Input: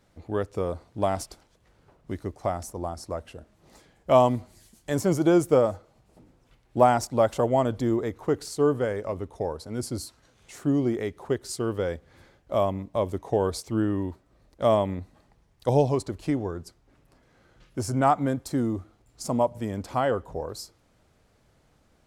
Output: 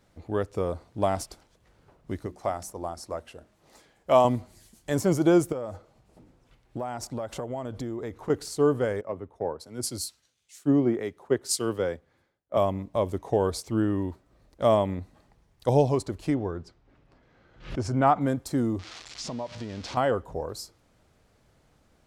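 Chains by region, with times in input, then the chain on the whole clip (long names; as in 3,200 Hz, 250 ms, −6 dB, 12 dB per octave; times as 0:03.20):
0:02.26–0:04.25: low-shelf EQ 250 Hz −7.5 dB + mains-hum notches 60/120/180/240/300/360 Hz
0:05.52–0:08.30: high-shelf EQ 11,000 Hz −4 dB + downward compressor, threshold −30 dBFS
0:09.01–0:12.57: high-pass filter 150 Hz 6 dB per octave + multiband upward and downward expander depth 100%
0:16.34–0:18.21: low-pass filter 4,200 Hz + background raised ahead of every attack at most 130 dB per second
0:18.79–0:19.97: spike at every zero crossing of −22 dBFS + low-pass filter 5,200 Hz 24 dB per octave + downward compressor 4 to 1, threshold −32 dBFS
whole clip: no processing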